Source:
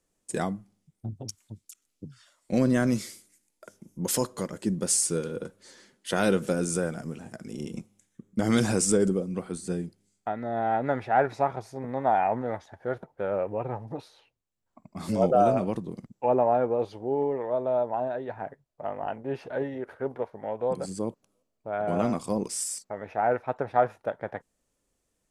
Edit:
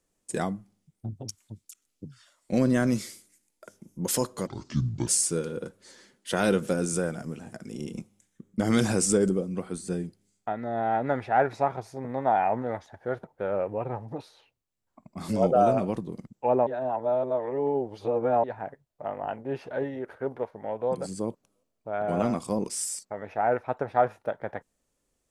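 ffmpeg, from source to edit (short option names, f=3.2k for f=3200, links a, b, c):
-filter_complex "[0:a]asplit=5[a][b][c][d][e];[a]atrim=end=4.474[f];[b]atrim=start=4.47:end=4.87,asetpts=PTS-STARTPTS,asetrate=29106,aresample=44100,atrim=end_sample=26727,asetpts=PTS-STARTPTS[g];[c]atrim=start=4.866:end=16.462[h];[d]atrim=start=16.458:end=18.232,asetpts=PTS-STARTPTS,areverse[i];[e]atrim=start=18.228[j];[f][g]acrossfade=d=0.004:c1=hsin:c2=hsin[k];[k][h]acrossfade=d=0.004:c1=hsin:c2=hsin[l];[l][i]acrossfade=d=0.004:c1=hsin:c2=hsin[m];[m][j]acrossfade=d=0.004:c1=hsin:c2=hsin"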